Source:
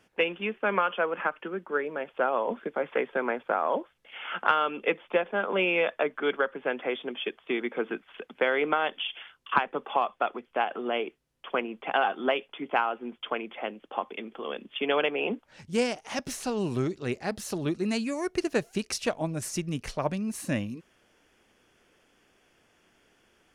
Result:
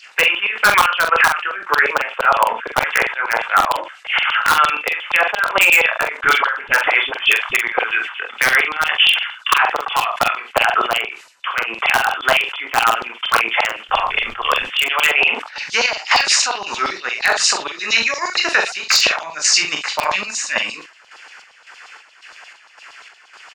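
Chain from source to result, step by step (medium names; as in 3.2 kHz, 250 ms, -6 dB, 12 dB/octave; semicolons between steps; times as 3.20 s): knee-point frequency compression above 3.5 kHz 1.5:1; band-stop 3.3 kHz, Q 8.1; on a send: early reflections 26 ms -5.5 dB, 53 ms -17 dB; on the sum: compression 6:1, threshold -29 dBFS, peak gain reduction 12.5 dB; LFO high-pass saw down 8.6 Hz 790–4200 Hz; 13.88–14.62 s: added noise brown -67 dBFS; in parallel at -4 dB: integer overflow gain 22 dB; on the sum: square tremolo 1.8 Hz, depth 60%, duty 55%; 6.17–7.57 s: phase dispersion highs, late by 50 ms, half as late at 360 Hz; doubling 44 ms -11 dB; loudness maximiser +21 dB; decay stretcher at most 110 dB/s; trim -2 dB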